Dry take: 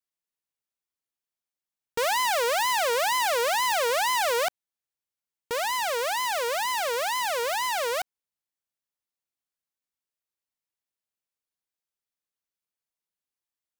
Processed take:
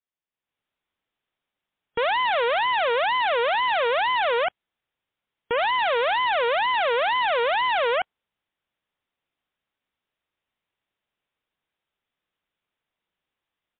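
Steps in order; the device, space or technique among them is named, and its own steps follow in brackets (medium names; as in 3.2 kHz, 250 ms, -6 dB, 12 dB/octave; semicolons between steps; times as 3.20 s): low-bitrate web radio (level rider gain up to 13 dB; peak limiter -16.5 dBFS, peak gain reduction 9.5 dB; MP3 32 kbps 8 kHz)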